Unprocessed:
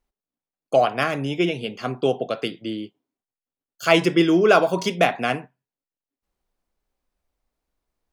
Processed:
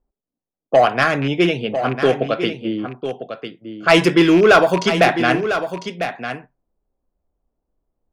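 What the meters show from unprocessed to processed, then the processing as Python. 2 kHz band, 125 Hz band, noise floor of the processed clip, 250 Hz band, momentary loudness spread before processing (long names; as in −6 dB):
+7.0 dB, +5.5 dB, below −85 dBFS, +5.5 dB, 13 LU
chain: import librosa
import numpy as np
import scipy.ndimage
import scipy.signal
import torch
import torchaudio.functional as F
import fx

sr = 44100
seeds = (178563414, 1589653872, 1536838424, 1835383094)

y = fx.rattle_buzz(x, sr, strikes_db=-26.0, level_db=-23.0)
y = fx.dynamic_eq(y, sr, hz=1600.0, q=2.5, threshold_db=-38.0, ratio=4.0, max_db=5)
y = 10.0 ** (-10.0 / 20.0) * np.tanh(y / 10.0 ** (-10.0 / 20.0))
y = fx.env_lowpass(y, sr, base_hz=670.0, full_db=-16.5)
y = y + 10.0 ** (-9.5 / 20.0) * np.pad(y, (int(1000 * sr / 1000.0), 0))[:len(y)]
y = F.gain(torch.from_numpy(y), 6.0).numpy()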